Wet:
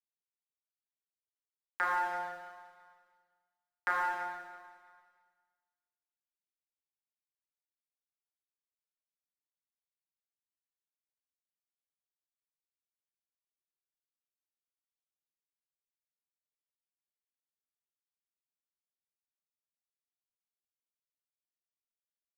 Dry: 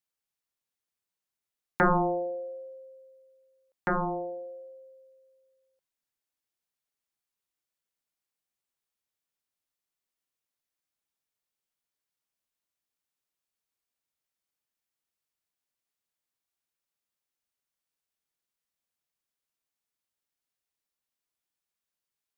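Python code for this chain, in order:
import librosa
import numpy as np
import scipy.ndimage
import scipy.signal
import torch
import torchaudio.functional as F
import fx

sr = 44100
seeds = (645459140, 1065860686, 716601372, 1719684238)

y = scipy.signal.sosfilt(scipy.signal.butter(2, 1200.0, 'highpass', fs=sr, output='sos'), x)
y = fx.rider(y, sr, range_db=10, speed_s=0.5)
y = np.sign(y) * np.maximum(np.abs(y) - 10.0 ** (-49.0 / 20.0), 0.0)
y = fx.echo_feedback(y, sr, ms=333, feedback_pct=35, wet_db=-17.5)
y = fx.rev_schroeder(y, sr, rt60_s=1.5, comb_ms=26, drr_db=-1.5)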